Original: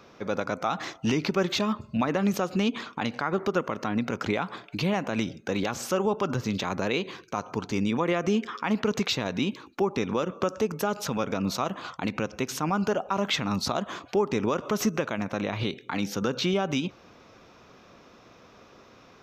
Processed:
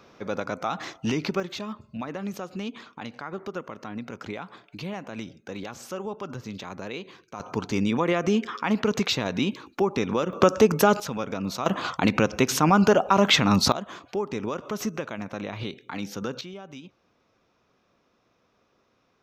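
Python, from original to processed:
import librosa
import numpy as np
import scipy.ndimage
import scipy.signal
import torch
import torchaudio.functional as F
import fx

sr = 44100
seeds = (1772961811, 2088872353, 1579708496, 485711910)

y = fx.gain(x, sr, db=fx.steps((0.0, -1.0), (1.4, -8.0), (7.4, 2.0), (10.33, 9.0), (11.0, -2.0), (11.66, 8.0), (13.72, -4.0), (16.41, -15.0)))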